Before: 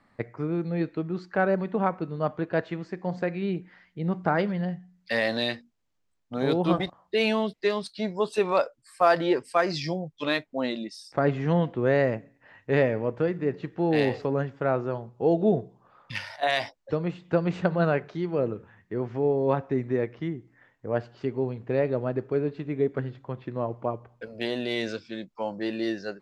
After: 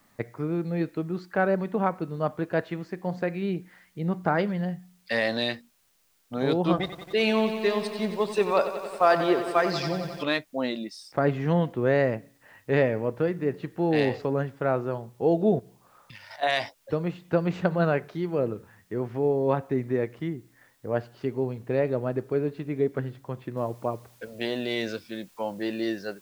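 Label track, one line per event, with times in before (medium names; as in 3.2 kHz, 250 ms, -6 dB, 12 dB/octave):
6.740000	10.230000	bit-crushed delay 91 ms, feedback 80%, word length 8-bit, level -11 dB
15.590000	16.310000	compression 5:1, threshold -44 dBFS
23.570000	23.570000	noise floor step -68 dB -60 dB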